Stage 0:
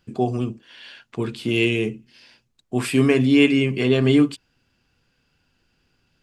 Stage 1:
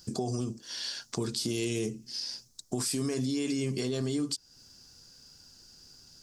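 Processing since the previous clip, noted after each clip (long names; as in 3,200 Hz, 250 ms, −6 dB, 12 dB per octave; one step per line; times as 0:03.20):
high shelf with overshoot 3,800 Hz +13 dB, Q 3
brickwall limiter −15.5 dBFS, peak gain reduction 11 dB
downward compressor 2.5 to 1, threshold −38 dBFS, peak gain reduction 12 dB
level +4 dB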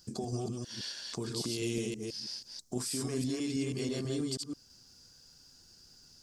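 delay that plays each chunk backwards 162 ms, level −1.5 dB
level −5.5 dB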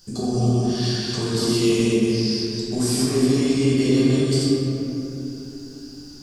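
rectangular room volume 140 cubic metres, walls hard, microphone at 1.2 metres
level +5 dB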